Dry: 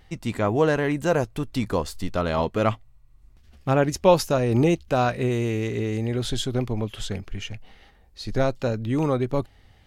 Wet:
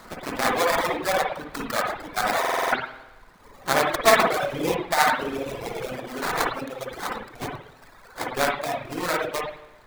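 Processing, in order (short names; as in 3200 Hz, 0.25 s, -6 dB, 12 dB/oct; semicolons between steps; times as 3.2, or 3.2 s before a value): repeated pitch sweeps +4 st, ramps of 0.462 s; added noise brown -36 dBFS; tilt shelf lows -9.5 dB, about 690 Hz; sample-rate reducer 2900 Hz, jitter 20%; low shelf 170 Hz -11.5 dB; spring tank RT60 1.1 s, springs 51/55 ms, chirp 60 ms, DRR -2.5 dB; reverb removal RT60 1.6 s; stuck buffer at 2.4, samples 2048, times 6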